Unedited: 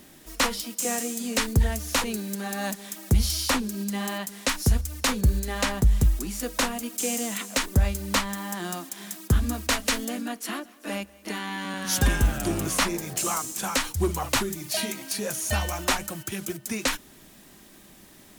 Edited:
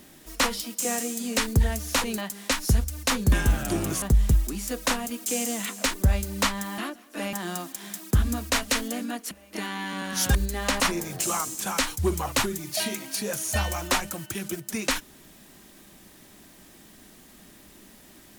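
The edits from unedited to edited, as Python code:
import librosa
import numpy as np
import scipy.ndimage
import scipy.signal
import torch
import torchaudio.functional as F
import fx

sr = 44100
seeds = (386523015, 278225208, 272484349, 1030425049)

y = fx.edit(x, sr, fx.cut(start_s=2.18, length_s=1.97),
    fx.swap(start_s=5.29, length_s=0.45, other_s=12.07, other_length_s=0.7),
    fx.move(start_s=10.48, length_s=0.55, to_s=8.5), tone=tone)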